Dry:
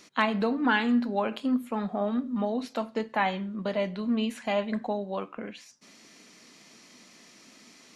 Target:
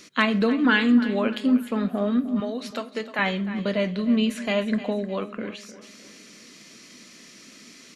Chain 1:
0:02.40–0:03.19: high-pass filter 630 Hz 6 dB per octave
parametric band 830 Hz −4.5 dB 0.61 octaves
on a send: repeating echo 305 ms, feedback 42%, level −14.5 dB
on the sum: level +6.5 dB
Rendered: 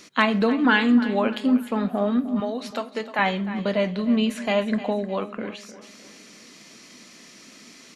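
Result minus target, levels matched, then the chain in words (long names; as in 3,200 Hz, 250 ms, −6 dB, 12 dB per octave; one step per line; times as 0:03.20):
1,000 Hz band +3.5 dB
0:02.40–0:03.19: high-pass filter 630 Hz 6 dB per octave
parametric band 830 Hz −12 dB 0.61 octaves
on a send: repeating echo 305 ms, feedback 42%, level −14.5 dB
on the sum: level +6.5 dB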